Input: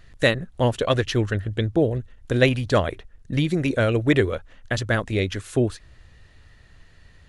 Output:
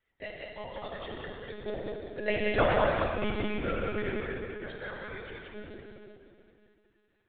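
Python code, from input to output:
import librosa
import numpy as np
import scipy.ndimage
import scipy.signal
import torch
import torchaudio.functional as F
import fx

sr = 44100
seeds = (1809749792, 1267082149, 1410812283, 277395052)

p1 = fx.reverse_delay(x, sr, ms=360, wet_db=-10.0)
p2 = fx.doppler_pass(p1, sr, speed_mps=20, closest_m=4.3, pass_at_s=2.88)
p3 = scipy.signal.sosfilt(scipy.signal.butter(2, 150.0, 'highpass', fs=sr, output='sos'), p2)
p4 = fx.spec_gate(p3, sr, threshold_db=-25, keep='strong')
p5 = fx.low_shelf(p4, sr, hz=300.0, db=-10.5)
p6 = (np.mod(10.0 ** (29.0 / 20.0) * p5 + 1.0, 2.0) - 1.0) / 10.0 ** (29.0 / 20.0)
p7 = p5 + F.gain(torch.from_numpy(p6), -11.0).numpy()
p8 = fx.air_absorb(p7, sr, metres=110.0)
p9 = p8 + fx.echo_single(p8, sr, ms=184, db=-5.0, dry=0)
p10 = fx.rev_plate(p9, sr, seeds[0], rt60_s=2.6, hf_ratio=0.95, predelay_ms=0, drr_db=-1.5)
y = fx.lpc_monotone(p10, sr, seeds[1], pitch_hz=210.0, order=16)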